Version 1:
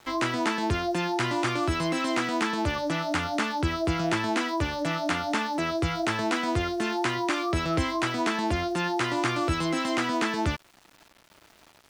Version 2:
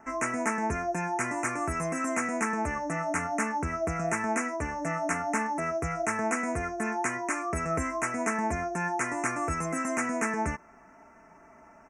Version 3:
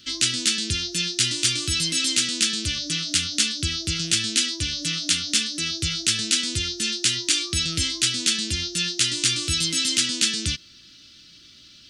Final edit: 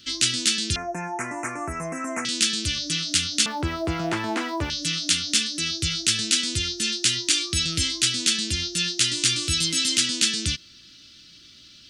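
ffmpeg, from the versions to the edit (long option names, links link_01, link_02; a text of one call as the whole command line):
ffmpeg -i take0.wav -i take1.wav -i take2.wav -filter_complex "[2:a]asplit=3[link_01][link_02][link_03];[link_01]atrim=end=0.762[link_04];[1:a]atrim=start=0.758:end=2.252[link_05];[link_02]atrim=start=2.248:end=3.462[link_06];[0:a]atrim=start=3.458:end=4.702[link_07];[link_03]atrim=start=4.698[link_08];[link_04][link_05]acrossfade=duration=0.004:curve1=hsin:curve2=hsin[link_09];[link_09][link_06]acrossfade=duration=0.004:curve1=hsin:curve2=hsin[link_10];[link_10][link_07]acrossfade=duration=0.004:curve1=hsin:curve2=hsin[link_11];[link_11][link_08]acrossfade=duration=0.004:curve1=hsin:curve2=hsin" out.wav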